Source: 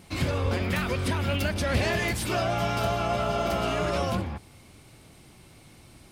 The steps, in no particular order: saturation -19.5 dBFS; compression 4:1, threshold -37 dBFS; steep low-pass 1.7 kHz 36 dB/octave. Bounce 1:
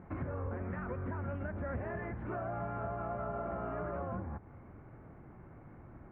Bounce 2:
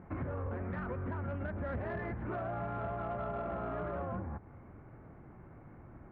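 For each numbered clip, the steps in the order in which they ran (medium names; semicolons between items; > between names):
compression > steep low-pass > saturation; steep low-pass > saturation > compression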